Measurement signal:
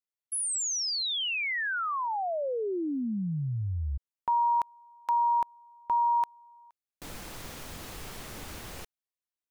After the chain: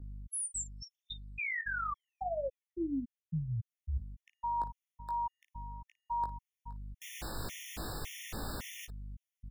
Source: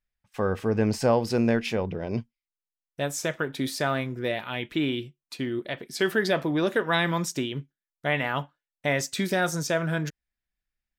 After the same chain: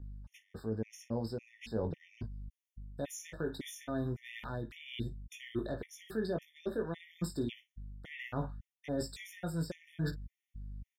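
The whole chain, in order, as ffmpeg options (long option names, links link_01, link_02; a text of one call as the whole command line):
ffmpeg -i in.wav -filter_complex "[0:a]aeval=exprs='val(0)+0.00398*(sin(2*PI*50*n/s)+sin(2*PI*2*50*n/s)/2+sin(2*PI*3*50*n/s)/3+sin(2*PI*4*50*n/s)/4+sin(2*PI*5*50*n/s)/5)':channel_layout=same,acrossover=split=500[link_01][link_02];[link_02]acompressor=threshold=-34dB:ratio=10:attack=0.24:release=107:knee=2.83:detection=peak[link_03];[link_01][link_03]amix=inputs=2:normalize=0,aecho=1:1:18|55:0.531|0.158,areverse,acompressor=threshold=-35dB:ratio=8:attack=32:release=611:knee=6:detection=peak,areverse,afftfilt=real='re*gt(sin(2*PI*1.8*pts/sr)*(1-2*mod(floor(b*sr/1024/1800),2)),0)':imag='im*gt(sin(2*PI*1.8*pts/sr)*(1-2*mod(floor(b*sr/1024/1800),2)),0)':win_size=1024:overlap=0.75,volume=3dB" out.wav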